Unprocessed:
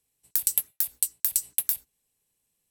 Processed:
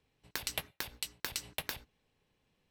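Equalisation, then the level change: air absorption 260 m; +10.5 dB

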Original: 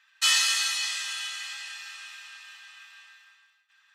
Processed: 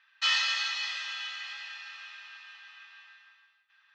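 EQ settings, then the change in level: LPF 6100 Hz 24 dB/oct; air absorption 150 m; 0.0 dB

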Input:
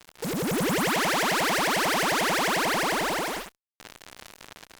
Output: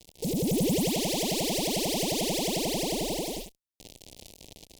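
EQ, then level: Butterworth band-stop 1400 Hz, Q 0.54; low shelf 96 Hz +8 dB; 0.0 dB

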